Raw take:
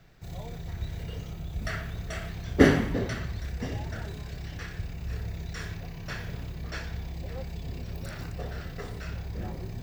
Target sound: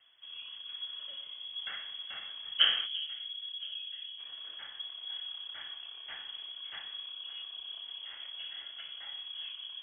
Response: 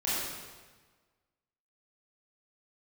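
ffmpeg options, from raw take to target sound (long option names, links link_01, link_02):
-filter_complex "[0:a]asplit=3[link_01][link_02][link_03];[link_01]afade=type=out:start_time=2.85:duration=0.02[link_04];[link_02]equalizer=frequency=2300:width_type=o:width=2.1:gain=-14.5,afade=type=in:start_time=2.85:duration=0.02,afade=type=out:start_time=4.18:duration=0.02[link_05];[link_03]afade=type=in:start_time=4.18:duration=0.02[link_06];[link_04][link_05][link_06]amix=inputs=3:normalize=0,lowpass=frequency=2900:width_type=q:width=0.5098,lowpass=frequency=2900:width_type=q:width=0.6013,lowpass=frequency=2900:width_type=q:width=0.9,lowpass=frequency=2900:width_type=q:width=2.563,afreqshift=-3400,volume=-8dB"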